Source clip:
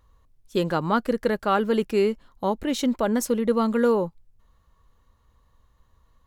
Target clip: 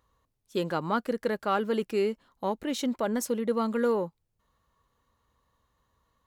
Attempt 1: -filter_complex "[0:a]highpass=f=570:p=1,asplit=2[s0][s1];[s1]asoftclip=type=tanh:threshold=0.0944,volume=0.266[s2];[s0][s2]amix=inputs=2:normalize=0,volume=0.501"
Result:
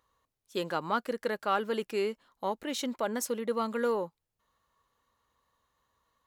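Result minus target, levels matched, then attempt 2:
125 Hz band -4.5 dB
-filter_complex "[0:a]highpass=f=170:p=1,asplit=2[s0][s1];[s1]asoftclip=type=tanh:threshold=0.0944,volume=0.266[s2];[s0][s2]amix=inputs=2:normalize=0,volume=0.501"

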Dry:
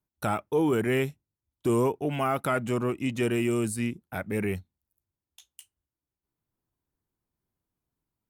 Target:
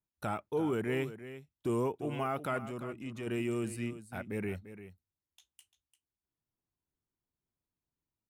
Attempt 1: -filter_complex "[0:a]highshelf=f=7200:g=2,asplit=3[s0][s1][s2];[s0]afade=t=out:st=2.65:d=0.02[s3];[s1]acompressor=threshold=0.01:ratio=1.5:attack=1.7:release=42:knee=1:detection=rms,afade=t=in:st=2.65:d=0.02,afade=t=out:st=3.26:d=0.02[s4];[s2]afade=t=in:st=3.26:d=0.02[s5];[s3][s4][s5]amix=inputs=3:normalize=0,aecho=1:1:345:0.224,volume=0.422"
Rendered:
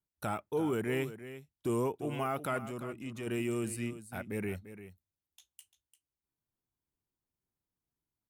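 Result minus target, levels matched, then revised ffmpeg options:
8 kHz band +5.0 dB
-filter_complex "[0:a]highshelf=f=7200:g=-6.5,asplit=3[s0][s1][s2];[s0]afade=t=out:st=2.65:d=0.02[s3];[s1]acompressor=threshold=0.01:ratio=1.5:attack=1.7:release=42:knee=1:detection=rms,afade=t=in:st=2.65:d=0.02,afade=t=out:st=3.26:d=0.02[s4];[s2]afade=t=in:st=3.26:d=0.02[s5];[s3][s4][s5]amix=inputs=3:normalize=0,aecho=1:1:345:0.224,volume=0.422"

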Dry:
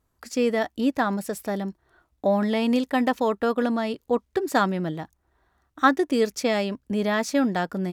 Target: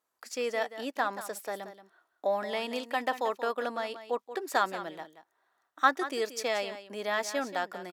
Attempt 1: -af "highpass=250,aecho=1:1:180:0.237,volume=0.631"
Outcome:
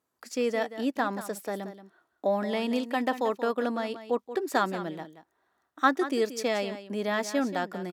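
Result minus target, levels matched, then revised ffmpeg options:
250 Hz band +8.0 dB
-af "highpass=550,aecho=1:1:180:0.237,volume=0.631"

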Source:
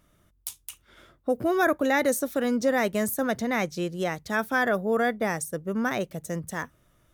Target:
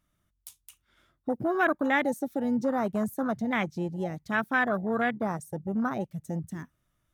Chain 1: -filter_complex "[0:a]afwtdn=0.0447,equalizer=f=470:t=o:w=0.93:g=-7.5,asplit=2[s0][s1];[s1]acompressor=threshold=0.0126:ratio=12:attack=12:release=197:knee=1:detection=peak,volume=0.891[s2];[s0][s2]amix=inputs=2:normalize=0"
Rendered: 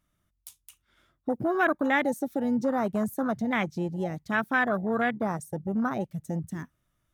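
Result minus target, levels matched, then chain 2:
compression: peak gain reduction -7.5 dB
-filter_complex "[0:a]afwtdn=0.0447,equalizer=f=470:t=o:w=0.93:g=-7.5,asplit=2[s0][s1];[s1]acompressor=threshold=0.00501:ratio=12:attack=12:release=197:knee=1:detection=peak,volume=0.891[s2];[s0][s2]amix=inputs=2:normalize=0"

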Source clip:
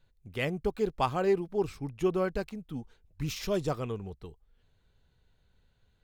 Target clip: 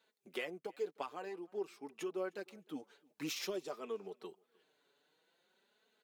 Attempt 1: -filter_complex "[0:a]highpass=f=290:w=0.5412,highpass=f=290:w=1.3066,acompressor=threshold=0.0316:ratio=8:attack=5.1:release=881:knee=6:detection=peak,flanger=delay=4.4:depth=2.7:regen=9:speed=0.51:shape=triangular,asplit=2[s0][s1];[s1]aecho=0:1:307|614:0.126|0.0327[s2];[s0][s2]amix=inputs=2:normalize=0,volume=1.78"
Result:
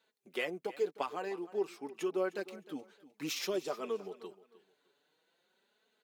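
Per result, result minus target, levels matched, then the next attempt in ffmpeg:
echo-to-direct +9.5 dB; compression: peak gain reduction -6 dB
-filter_complex "[0:a]highpass=f=290:w=0.5412,highpass=f=290:w=1.3066,acompressor=threshold=0.0316:ratio=8:attack=5.1:release=881:knee=6:detection=peak,flanger=delay=4.4:depth=2.7:regen=9:speed=0.51:shape=triangular,asplit=2[s0][s1];[s1]aecho=0:1:307|614:0.0422|0.011[s2];[s0][s2]amix=inputs=2:normalize=0,volume=1.78"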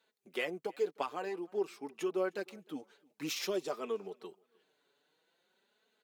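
compression: peak gain reduction -6 dB
-filter_complex "[0:a]highpass=f=290:w=0.5412,highpass=f=290:w=1.3066,acompressor=threshold=0.0141:ratio=8:attack=5.1:release=881:knee=6:detection=peak,flanger=delay=4.4:depth=2.7:regen=9:speed=0.51:shape=triangular,asplit=2[s0][s1];[s1]aecho=0:1:307|614:0.0422|0.011[s2];[s0][s2]amix=inputs=2:normalize=0,volume=1.78"

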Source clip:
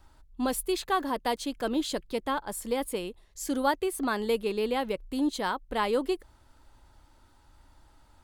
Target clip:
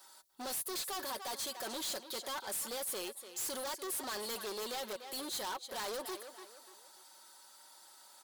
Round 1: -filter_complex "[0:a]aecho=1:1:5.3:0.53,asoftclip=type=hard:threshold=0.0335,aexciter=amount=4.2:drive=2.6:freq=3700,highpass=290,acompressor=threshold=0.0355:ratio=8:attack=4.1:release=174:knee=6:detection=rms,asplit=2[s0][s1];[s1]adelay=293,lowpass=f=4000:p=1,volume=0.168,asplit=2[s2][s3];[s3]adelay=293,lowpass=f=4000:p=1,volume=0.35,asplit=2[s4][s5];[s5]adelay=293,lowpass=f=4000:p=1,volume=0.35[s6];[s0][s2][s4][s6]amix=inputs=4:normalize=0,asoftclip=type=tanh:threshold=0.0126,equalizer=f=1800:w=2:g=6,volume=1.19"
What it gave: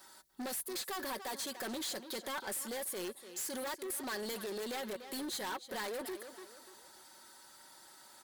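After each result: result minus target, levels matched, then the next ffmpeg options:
compression: peak gain reduction +12.5 dB; 250 Hz band +6.0 dB; 2 kHz band +3.5 dB
-filter_complex "[0:a]aecho=1:1:5.3:0.53,asoftclip=type=hard:threshold=0.0335,aexciter=amount=4.2:drive=2.6:freq=3700,highpass=290,asplit=2[s0][s1];[s1]adelay=293,lowpass=f=4000:p=1,volume=0.168,asplit=2[s2][s3];[s3]adelay=293,lowpass=f=4000:p=1,volume=0.35,asplit=2[s4][s5];[s5]adelay=293,lowpass=f=4000:p=1,volume=0.35[s6];[s0][s2][s4][s6]amix=inputs=4:normalize=0,asoftclip=type=tanh:threshold=0.0126,equalizer=f=1800:w=2:g=6,volume=1.19"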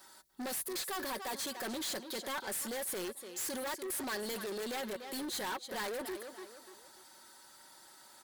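250 Hz band +5.5 dB; 2 kHz band +3.5 dB
-filter_complex "[0:a]aecho=1:1:5.3:0.53,asoftclip=type=hard:threshold=0.0335,aexciter=amount=4.2:drive=2.6:freq=3700,highpass=590,asplit=2[s0][s1];[s1]adelay=293,lowpass=f=4000:p=1,volume=0.168,asplit=2[s2][s3];[s3]adelay=293,lowpass=f=4000:p=1,volume=0.35,asplit=2[s4][s5];[s5]adelay=293,lowpass=f=4000:p=1,volume=0.35[s6];[s0][s2][s4][s6]amix=inputs=4:normalize=0,asoftclip=type=tanh:threshold=0.0126,equalizer=f=1800:w=2:g=6,volume=1.19"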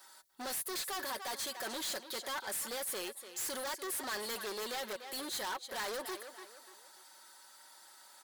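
2 kHz band +4.0 dB
-filter_complex "[0:a]aecho=1:1:5.3:0.53,asoftclip=type=hard:threshold=0.0335,aexciter=amount=4.2:drive=2.6:freq=3700,highpass=590,asplit=2[s0][s1];[s1]adelay=293,lowpass=f=4000:p=1,volume=0.168,asplit=2[s2][s3];[s3]adelay=293,lowpass=f=4000:p=1,volume=0.35,asplit=2[s4][s5];[s5]adelay=293,lowpass=f=4000:p=1,volume=0.35[s6];[s0][s2][s4][s6]amix=inputs=4:normalize=0,asoftclip=type=tanh:threshold=0.0126,volume=1.19"

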